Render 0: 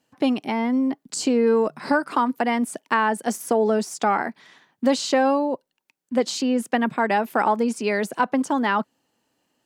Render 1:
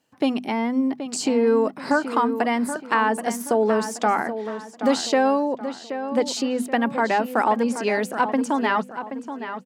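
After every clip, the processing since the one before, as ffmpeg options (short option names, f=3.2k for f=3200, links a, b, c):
-filter_complex "[0:a]bandreject=f=50:t=h:w=6,bandreject=f=100:t=h:w=6,bandreject=f=150:t=h:w=6,bandreject=f=200:t=h:w=6,bandreject=f=250:t=h:w=6,asplit=2[a][b];[b]adelay=777,lowpass=f=3.6k:p=1,volume=-10dB,asplit=2[c][d];[d]adelay=777,lowpass=f=3.6k:p=1,volume=0.39,asplit=2[e][f];[f]adelay=777,lowpass=f=3.6k:p=1,volume=0.39,asplit=2[g][h];[h]adelay=777,lowpass=f=3.6k:p=1,volume=0.39[i];[a][c][e][g][i]amix=inputs=5:normalize=0"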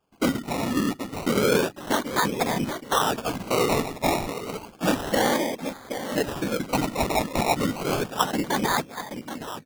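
-af "afftfilt=real='hypot(re,im)*cos(2*PI*random(0))':imag='hypot(re,im)*sin(2*PI*random(1))':win_size=512:overlap=0.75,acrusher=samples=22:mix=1:aa=0.000001:lfo=1:lforange=13.2:lforate=0.31,volume=3dB"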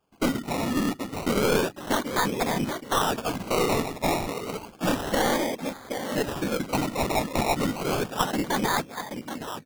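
-af "aeval=exprs='clip(val(0),-1,0.0708)':c=same"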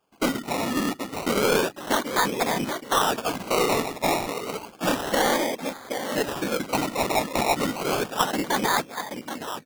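-af "lowshelf=f=180:g=-11,volume=3dB"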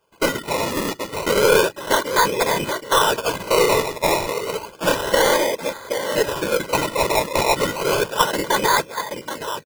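-af "aecho=1:1:2:0.64,volume=4dB"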